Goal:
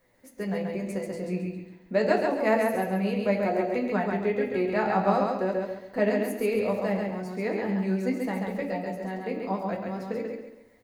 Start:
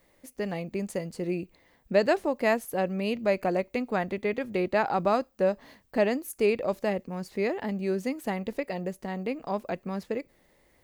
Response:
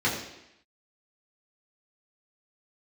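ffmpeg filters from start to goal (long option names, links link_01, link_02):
-filter_complex "[0:a]flanger=delay=7.6:depth=3.1:regen=36:speed=1.1:shape=triangular,aecho=1:1:136|272|408|544|680:0.668|0.234|0.0819|0.0287|0.01,asplit=2[link_01][link_02];[1:a]atrim=start_sample=2205,afade=type=out:start_time=0.17:duration=0.01,atrim=end_sample=7938[link_03];[link_02][link_03]afir=irnorm=-1:irlink=0,volume=-14dB[link_04];[link_01][link_04]amix=inputs=2:normalize=0"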